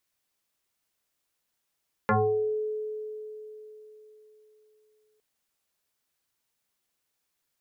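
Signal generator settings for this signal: FM tone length 3.11 s, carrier 429 Hz, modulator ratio 0.75, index 4.4, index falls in 0.55 s exponential, decay 3.83 s, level -19 dB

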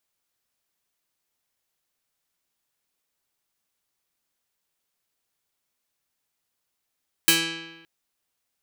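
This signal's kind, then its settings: plucked string E3, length 0.57 s, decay 1.13 s, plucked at 0.24, medium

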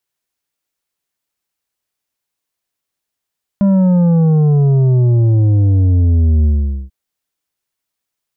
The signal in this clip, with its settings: sub drop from 200 Hz, over 3.29 s, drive 7.5 dB, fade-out 0.45 s, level -9 dB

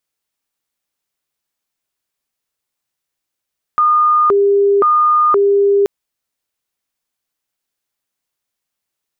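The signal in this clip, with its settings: siren hi-lo 401–1220 Hz 0.96/s sine -8.5 dBFS 2.08 s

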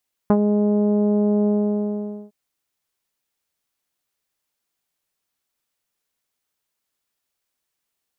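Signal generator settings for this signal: synth note saw G#3 24 dB/oct, low-pass 610 Hz, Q 0.91, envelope 1 oct, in 0.08 s, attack 1.8 ms, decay 0.06 s, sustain -5.5 dB, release 0.84 s, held 1.17 s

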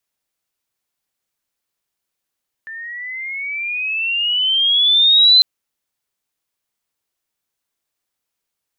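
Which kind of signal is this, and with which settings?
gliding synth tone sine, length 2.75 s, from 1770 Hz, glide +14.5 st, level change +22.5 dB, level -6 dB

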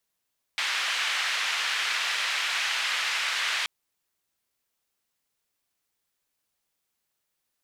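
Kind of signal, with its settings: noise band 1700–2600 Hz, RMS -28 dBFS 3.08 s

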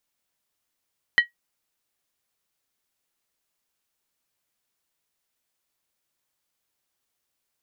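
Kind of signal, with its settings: skin hit, lowest mode 1910 Hz, decay 0.13 s, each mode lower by 11 dB, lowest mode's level -8.5 dB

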